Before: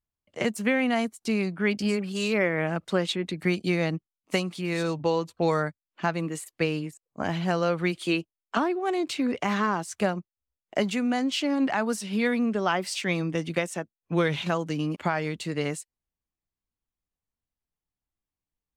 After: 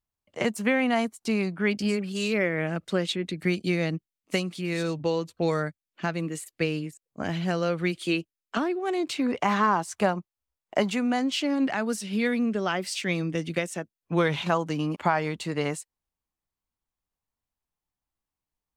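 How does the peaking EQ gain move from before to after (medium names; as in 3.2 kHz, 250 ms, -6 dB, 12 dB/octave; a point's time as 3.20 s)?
peaking EQ 930 Hz 0.94 oct
1.32 s +3 dB
2.21 s -6 dB
8.76 s -6 dB
9.38 s +6 dB
10.84 s +6 dB
11.82 s -5.5 dB
13.69 s -5.5 dB
14.36 s +6 dB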